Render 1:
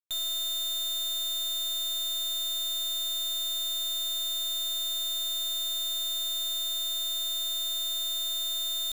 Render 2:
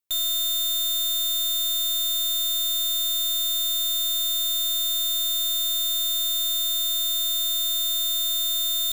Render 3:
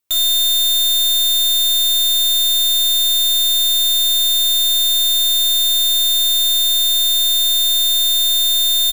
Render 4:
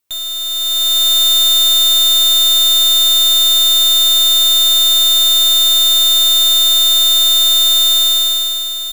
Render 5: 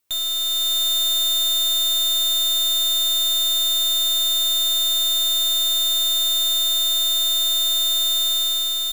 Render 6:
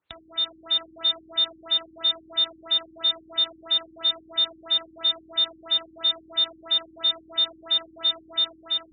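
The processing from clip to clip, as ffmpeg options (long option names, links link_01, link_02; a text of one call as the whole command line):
ffmpeg -i in.wav -af "highshelf=frequency=10000:gain=8,volume=4.5dB" out.wav
ffmpeg -i in.wav -af "aecho=1:1:36|58:0.251|0.447,volume=8dB" out.wav
ffmpeg -i in.wav -af "acontrast=63,asoftclip=type=tanh:threshold=-19.5dB,dynaudnorm=framelen=120:gausssize=13:maxgain=12dB,volume=-2.5dB" out.wav
ffmpeg -i in.wav -af "asoftclip=type=tanh:threshold=-19.5dB" out.wav
ffmpeg -i in.wav -af "highpass=frequency=46:width=0.5412,highpass=frequency=46:width=1.3066,highshelf=frequency=8000:gain=-10,afftfilt=real='re*lt(b*sr/1024,340*pow(4500/340,0.5+0.5*sin(2*PI*3*pts/sr)))':imag='im*lt(b*sr/1024,340*pow(4500/340,0.5+0.5*sin(2*PI*3*pts/sr)))':win_size=1024:overlap=0.75,volume=3dB" out.wav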